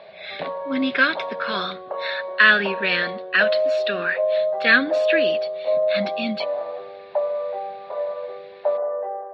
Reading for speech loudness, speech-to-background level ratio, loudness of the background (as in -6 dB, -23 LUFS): -21.5 LUFS, 4.5 dB, -26.0 LUFS